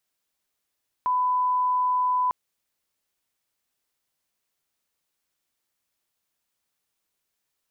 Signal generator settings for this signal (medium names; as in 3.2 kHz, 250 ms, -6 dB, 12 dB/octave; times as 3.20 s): line-up tone -20 dBFS 1.25 s